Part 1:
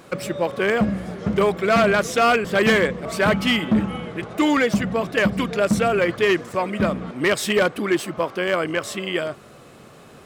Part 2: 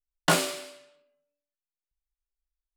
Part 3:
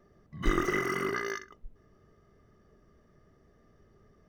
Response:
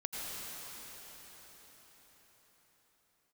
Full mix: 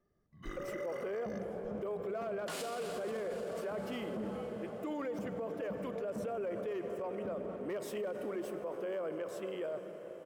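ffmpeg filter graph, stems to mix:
-filter_complex "[0:a]equalizer=frequency=500:width_type=o:width=1:gain=11,equalizer=frequency=2000:width_type=o:width=1:gain=-6,equalizer=frequency=4000:width_type=o:width=1:gain=-9,equalizer=frequency=8000:width_type=o:width=1:gain=-6,adelay=450,volume=-16.5dB,asplit=2[link_01][link_02];[link_02]volume=-13dB[link_03];[1:a]acompressor=threshold=-34dB:ratio=1.5,adelay=2200,volume=-1.5dB,asplit=2[link_04][link_05];[link_05]volume=-13dB[link_06];[2:a]volume=-15.5dB[link_07];[link_01][link_04]amix=inputs=2:normalize=0,lowshelf=frequency=210:gain=-10,acompressor=threshold=-30dB:ratio=6,volume=0dB[link_08];[3:a]atrim=start_sample=2205[link_09];[link_03][link_06]amix=inputs=2:normalize=0[link_10];[link_10][link_09]afir=irnorm=-1:irlink=0[link_11];[link_07][link_08][link_11]amix=inputs=3:normalize=0,alimiter=level_in=7.5dB:limit=-24dB:level=0:latency=1:release=30,volume=-7.5dB"

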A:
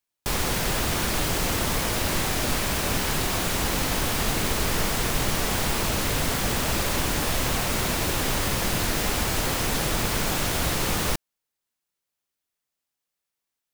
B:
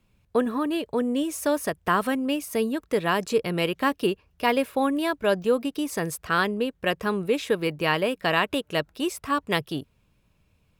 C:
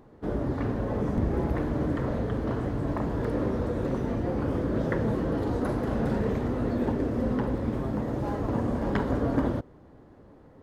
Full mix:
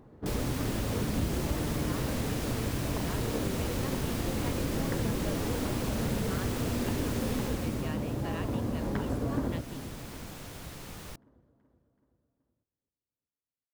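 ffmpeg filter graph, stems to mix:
ffmpeg -i stem1.wav -i stem2.wav -i stem3.wav -filter_complex "[0:a]volume=-9dB,afade=type=out:start_time=7.31:duration=0.66:silence=0.266073[link_01];[1:a]volume=-17dB[link_02];[2:a]volume=-3.5dB,asplit=2[link_03][link_04];[link_04]volume=-17.5dB,aecho=0:1:378|756|1134|1512|1890|2268|2646|3024:1|0.56|0.314|0.176|0.0983|0.0551|0.0308|0.0173[link_05];[link_01][link_02][link_03][link_05]amix=inputs=4:normalize=0,equalizer=frequency=110:width=0.48:gain=5,acompressor=threshold=-35dB:ratio=1.5" out.wav

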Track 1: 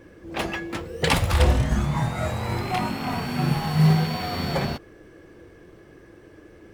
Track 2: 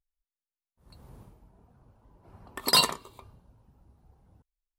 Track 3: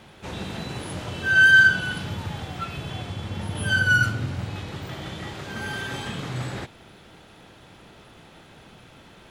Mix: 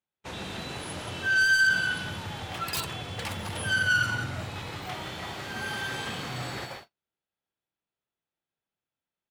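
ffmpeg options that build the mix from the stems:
ffmpeg -i stem1.wav -i stem2.wav -i stem3.wav -filter_complex "[0:a]asoftclip=type=hard:threshold=-18dB,highpass=450,adelay=2150,volume=-11dB[link_01];[1:a]acontrast=36,aeval=exprs='(mod(2.37*val(0)+1,2)-1)/2.37':channel_layout=same,volume=-16.5dB[link_02];[2:a]asoftclip=type=tanh:threshold=-18.5dB,volume=-0.5dB,asplit=2[link_03][link_04];[link_04]volume=-8.5dB,aecho=0:1:177:1[link_05];[link_01][link_02][link_03][link_05]amix=inputs=4:normalize=0,agate=range=-43dB:threshold=-37dB:ratio=16:detection=peak,lowshelf=frequency=440:gain=-7" out.wav

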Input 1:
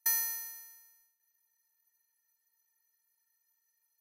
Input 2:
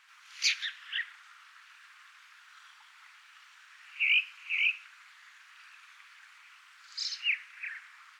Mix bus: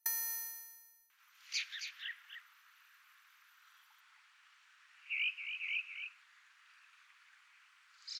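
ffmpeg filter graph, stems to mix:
ffmpeg -i stem1.wav -i stem2.wav -filter_complex "[0:a]acompressor=threshold=-34dB:ratio=4,volume=-0.5dB[link_01];[1:a]adelay=1100,volume=-10.5dB,asplit=2[link_02][link_03];[link_03]volume=-7.5dB,aecho=0:1:271:1[link_04];[link_01][link_02][link_04]amix=inputs=3:normalize=0" out.wav

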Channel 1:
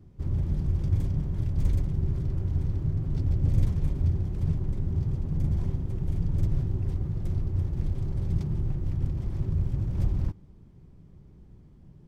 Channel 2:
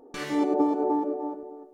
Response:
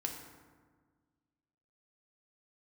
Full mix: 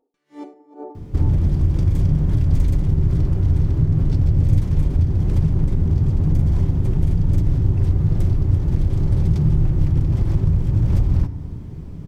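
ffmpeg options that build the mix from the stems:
-filter_complex "[0:a]acompressor=threshold=-32dB:ratio=4,adelay=950,volume=1.5dB,asplit=2[link_01][link_02];[link_02]volume=-3.5dB[link_03];[1:a]aeval=exprs='val(0)*pow(10,-27*(0.5-0.5*cos(2*PI*2.4*n/s))/20)':channel_layout=same,volume=-20dB,asplit=2[link_04][link_05];[link_05]volume=-15dB[link_06];[2:a]atrim=start_sample=2205[link_07];[link_03][link_06]amix=inputs=2:normalize=0[link_08];[link_08][link_07]afir=irnorm=-1:irlink=0[link_09];[link_01][link_04][link_09]amix=inputs=3:normalize=0,dynaudnorm=framelen=250:gausssize=3:maxgain=12dB"

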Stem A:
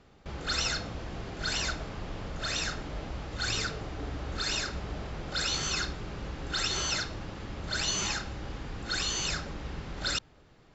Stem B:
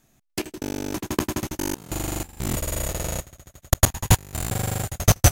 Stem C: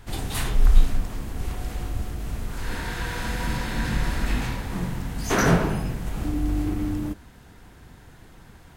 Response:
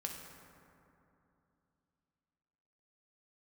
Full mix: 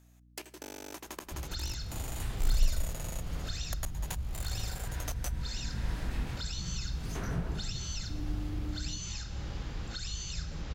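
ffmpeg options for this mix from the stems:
-filter_complex "[0:a]acrossover=split=150|3000[link_01][link_02][link_03];[link_02]acompressor=threshold=-49dB:ratio=3[link_04];[link_01][link_04][link_03]amix=inputs=3:normalize=0,adelay=1050,volume=0dB,asplit=2[link_05][link_06];[link_06]volume=-9dB[link_07];[1:a]highpass=500,volume=-6dB,asplit=2[link_08][link_09];[link_09]volume=-17.5dB[link_10];[2:a]adelay=1850,volume=-10.5dB[link_11];[3:a]atrim=start_sample=2205[link_12];[link_07][link_10]amix=inputs=2:normalize=0[link_13];[link_13][link_12]afir=irnorm=-1:irlink=0[link_14];[link_05][link_08][link_11][link_14]amix=inputs=4:normalize=0,acrossover=split=150[link_15][link_16];[link_16]acompressor=threshold=-41dB:ratio=4[link_17];[link_15][link_17]amix=inputs=2:normalize=0,aeval=exprs='val(0)+0.00112*(sin(2*PI*60*n/s)+sin(2*PI*2*60*n/s)/2+sin(2*PI*3*60*n/s)/3+sin(2*PI*4*60*n/s)/4+sin(2*PI*5*60*n/s)/5)':channel_layout=same"

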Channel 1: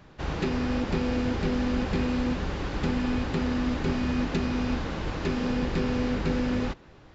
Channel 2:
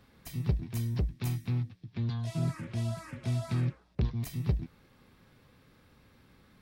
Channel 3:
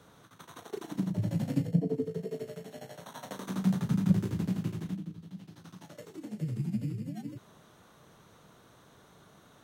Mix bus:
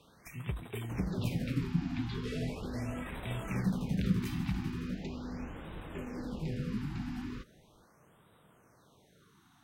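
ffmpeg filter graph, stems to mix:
ffmpeg -i stem1.wav -i stem2.wav -i stem3.wav -filter_complex "[0:a]adelay=700,volume=-13.5dB[link_01];[1:a]equalizer=frequency=2500:width=0.67:gain=14,volume=-8.5dB[link_02];[2:a]bandreject=frequency=6900:width=16,volume=-5dB[link_03];[link_01][link_02][link_03]amix=inputs=3:normalize=0,afftfilt=real='re*(1-between(b*sr/1024,480*pow(5600/480,0.5+0.5*sin(2*PI*0.39*pts/sr))/1.41,480*pow(5600/480,0.5+0.5*sin(2*PI*0.39*pts/sr))*1.41))':imag='im*(1-between(b*sr/1024,480*pow(5600/480,0.5+0.5*sin(2*PI*0.39*pts/sr))/1.41,480*pow(5600/480,0.5+0.5*sin(2*PI*0.39*pts/sr))*1.41))':win_size=1024:overlap=0.75" out.wav

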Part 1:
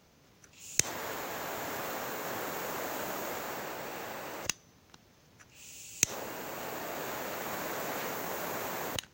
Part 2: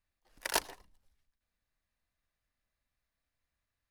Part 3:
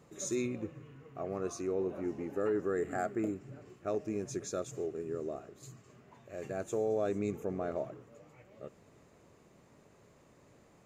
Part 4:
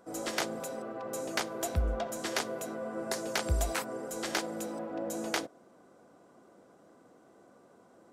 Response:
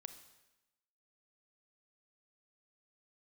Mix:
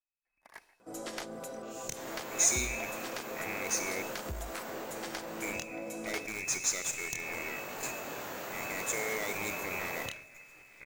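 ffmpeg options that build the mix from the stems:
-filter_complex "[0:a]flanger=delay=20:depth=7.3:speed=0.61,adelay=1100,volume=2.5dB[link_01];[1:a]volume=-18.5dB,asplit=2[link_02][link_03];[link_03]volume=-4dB[link_04];[2:a]aexciter=amount=10.7:drive=5.7:freq=2700,acrusher=bits=6:dc=4:mix=0:aa=0.000001,adelay=2200,volume=2dB,asplit=3[link_05][link_06][link_07];[link_05]atrim=end=4.02,asetpts=PTS-STARTPTS,afade=type=out:start_time=4.016:duration=0.004:curve=hsin[link_08];[link_06]atrim=start=4.02:end=5.42,asetpts=PTS-STARTPTS,volume=0[link_09];[link_07]atrim=start=5.42,asetpts=PTS-STARTPTS,afade=type=in:duration=0.004:curve=hsin[link_10];[link_08][link_09][link_10]concat=n=3:v=0:a=1,asplit=2[link_11][link_12];[link_12]volume=-5.5dB[link_13];[3:a]adelay=800,volume=-2dB[link_14];[link_01][link_14]amix=inputs=2:normalize=0,aeval=exprs='(tanh(10*val(0)+0.35)-tanh(0.35))/10':channel_layout=same,acompressor=threshold=-36dB:ratio=5,volume=0dB[link_15];[link_02][link_11]amix=inputs=2:normalize=0,lowpass=frequency=2200:width_type=q:width=0.5098,lowpass=frequency=2200:width_type=q:width=0.6013,lowpass=frequency=2200:width_type=q:width=0.9,lowpass=frequency=2200:width_type=q:width=2.563,afreqshift=-2600,alimiter=level_in=6.5dB:limit=-24dB:level=0:latency=1,volume=-6.5dB,volume=0dB[link_16];[4:a]atrim=start_sample=2205[link_17];[link_04][link_13]amix=inputs=2:normalize=0[link_18];[link_18][link_17]afir=irnorm=-1:irlink=0[link_19];[link_15][link_16][link_19]amix=inputs=3:normalize=0"

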